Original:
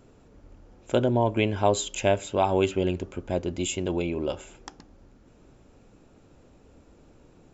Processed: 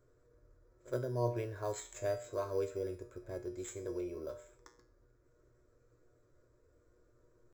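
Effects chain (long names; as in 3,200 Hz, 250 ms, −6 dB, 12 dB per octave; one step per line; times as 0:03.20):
phaser with its sweep stopped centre 780 Hz, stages 6
pitch shifter +0.5 semitones
in parallel at −10 dB: sample-rate reduction 5,400 Hz, jitter 0%
on the sum: tuned comb filter 120 Hz, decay 0.41 s, harmonics all, mix 80%
echo ahead of the sound 71 ms −22 dB
level −4 dB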